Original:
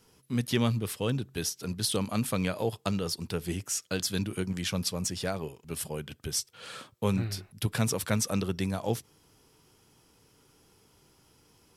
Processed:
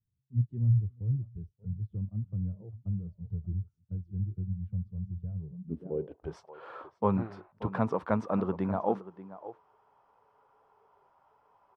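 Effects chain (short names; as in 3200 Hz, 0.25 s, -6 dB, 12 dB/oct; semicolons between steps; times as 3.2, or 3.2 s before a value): outdoor echo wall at 100 m, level -14 dB; low-pass sweep 110 Hz -> 1000 Hz, 5.38–6.35; spectral noise reduction 18 dB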